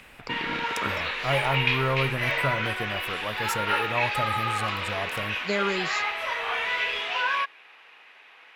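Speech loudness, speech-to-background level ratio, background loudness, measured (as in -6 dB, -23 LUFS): -31.0 LUFS, -4.0 dB, -27.0 LUFS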